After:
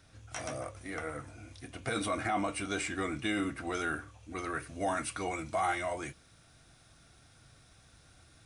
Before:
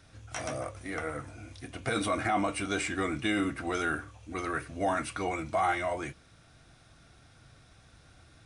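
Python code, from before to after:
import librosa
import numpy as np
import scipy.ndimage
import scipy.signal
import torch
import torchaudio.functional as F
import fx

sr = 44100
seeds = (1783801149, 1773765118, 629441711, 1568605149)

y = fx.high_shelf(x, sr, hz=6000.0, db=fx.steps((0.0, 3.0), (4.62, 9.5)))
y = y * librosa.db_to_amplitude(-3.5)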